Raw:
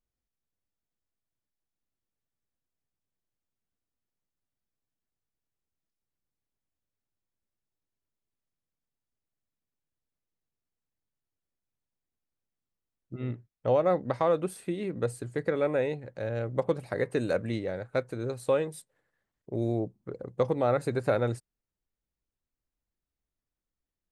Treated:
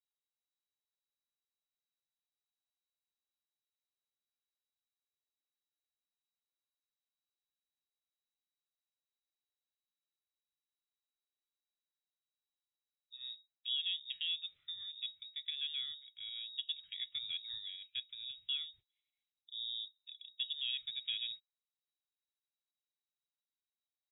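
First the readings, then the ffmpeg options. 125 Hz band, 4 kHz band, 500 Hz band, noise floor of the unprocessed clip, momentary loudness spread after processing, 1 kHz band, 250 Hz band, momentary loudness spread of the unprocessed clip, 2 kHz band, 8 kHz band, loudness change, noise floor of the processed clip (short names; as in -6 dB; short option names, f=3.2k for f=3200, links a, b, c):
under -40 dB, +15.5 dB, under -40 dB, under -85 dBFS, 10 LU, under -40 dB, under -40 dB, 11 LU, -12.5 dB, under -25 dB, -9.5 dB, under -85 dBFS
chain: -af "lowpass=f=3.3k:t=q:w=0.5098,lowpass=f=3.3k:t=q:w=0.6013,lowpass=f=3.3k:t=q:w=0.9,lowpass=f=3.3k:t=q:w=2.563,afreqshift=-3900,firequalizer=gain_entry='entry(120,0);entry(260,-20);entry(1000,-22);entry(2600,-8)':delay=0.05:min_phase=1,volume=-5.5dB"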